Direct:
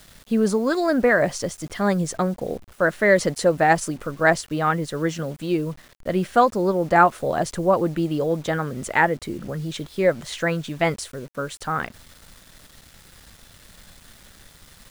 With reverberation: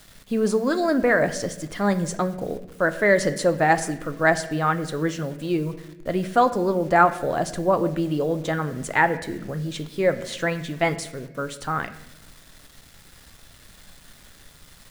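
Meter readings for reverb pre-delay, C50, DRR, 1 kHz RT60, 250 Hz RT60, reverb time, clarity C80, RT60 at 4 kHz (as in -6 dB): 3 ms, 13.5 dB, 9.0 dB, 0.80 s, 1.4 s, 0.90 s, 15.0 dB, 0.65 s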